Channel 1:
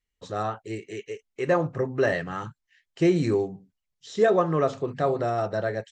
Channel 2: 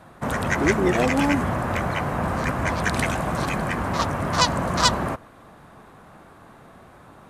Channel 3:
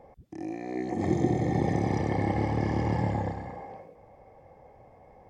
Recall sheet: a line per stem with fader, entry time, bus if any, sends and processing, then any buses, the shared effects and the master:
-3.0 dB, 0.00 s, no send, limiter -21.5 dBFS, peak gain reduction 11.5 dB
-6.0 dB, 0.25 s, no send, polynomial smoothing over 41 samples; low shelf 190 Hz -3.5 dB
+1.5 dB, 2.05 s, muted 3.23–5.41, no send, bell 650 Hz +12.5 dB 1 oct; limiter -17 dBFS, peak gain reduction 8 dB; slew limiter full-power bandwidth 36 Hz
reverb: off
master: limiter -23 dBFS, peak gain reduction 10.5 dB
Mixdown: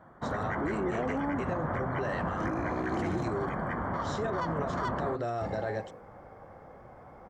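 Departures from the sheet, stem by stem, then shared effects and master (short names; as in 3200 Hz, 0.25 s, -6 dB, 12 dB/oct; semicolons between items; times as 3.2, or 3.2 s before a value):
stem 2: entry 0.25 s -> 0.00 s; stem 3: missing bell 650 Hz +12.5 dB 1 oct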